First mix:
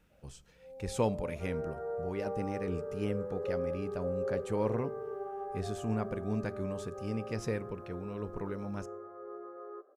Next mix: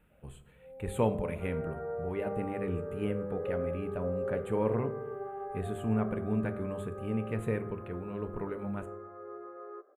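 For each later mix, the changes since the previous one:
speech: send +11.0 dB; second sound: remove LPF 1500 Hz; master: add Butterworth band-stop 5400 Hz, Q 0.95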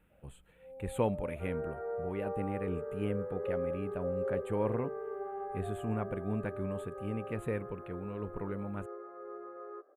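reverb: off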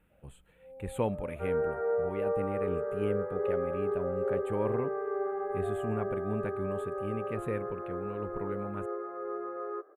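second sound +8.5 dB

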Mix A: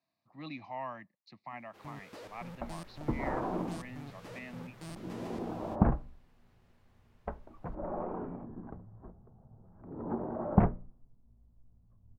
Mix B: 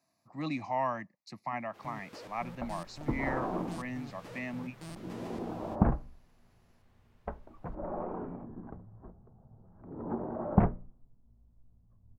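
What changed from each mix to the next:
speech: remove ladder low-pass 4300 Hz, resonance 45%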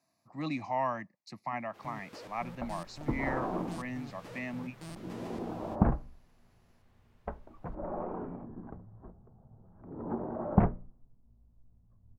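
none

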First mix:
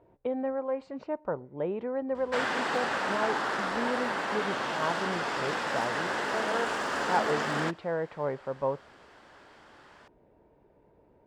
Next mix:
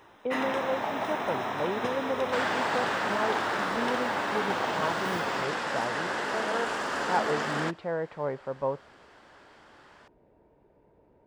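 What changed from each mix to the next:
first sound: unmuted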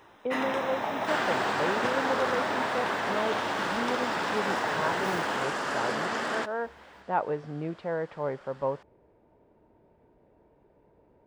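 second sound: entry -1.25 s

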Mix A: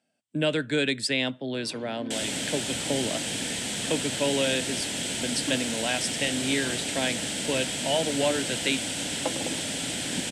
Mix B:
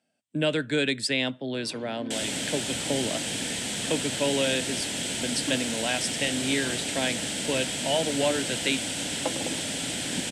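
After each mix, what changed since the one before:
none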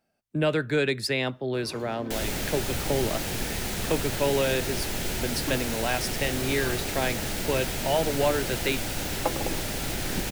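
first sound: remove air absorption 200 m; master: remove speaker cabinet 160–9900 Hz, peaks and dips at 270 Hz +5 dB, 380 Hz -7 dB, 820 Hz -4 dB, 1200 Hz -8 dB, 3200 Hz +8 dB, 8100 Hz +10 dB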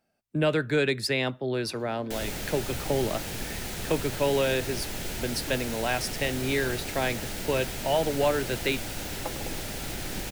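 first sound -8.5 dB; second sound -4.0 dB

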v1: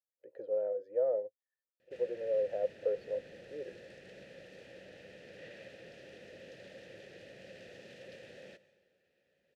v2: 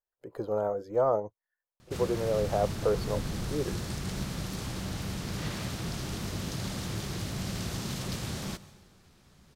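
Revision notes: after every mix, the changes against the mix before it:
master: remove vowel filter e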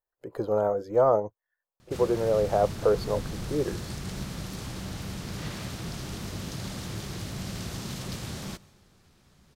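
speech +4.5 dB; background: send -6.0 dB

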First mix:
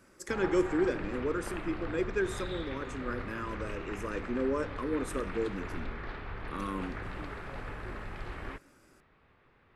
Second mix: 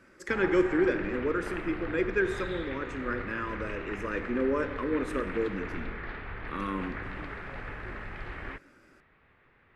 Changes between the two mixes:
speech: send +10.0 dB; master: add EQ curve 1100 Hz 0 dB, 1900 Hz +6 dB, 8800 Hz -11 dB

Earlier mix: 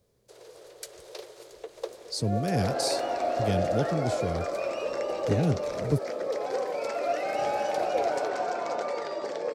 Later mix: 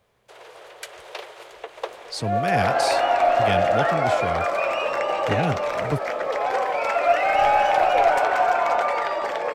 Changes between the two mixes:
second sound: remove BPF 150–6900 Hz; master: add band shelf 1500 Hz +13.5 dB 2.6 oct

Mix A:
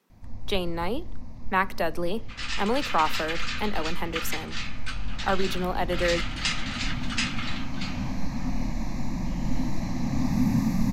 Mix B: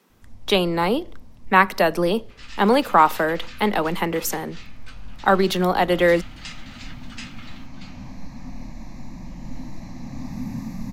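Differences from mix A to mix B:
speech +9.0 dB; first sound -7.0 dB; second sound -10.0 dB

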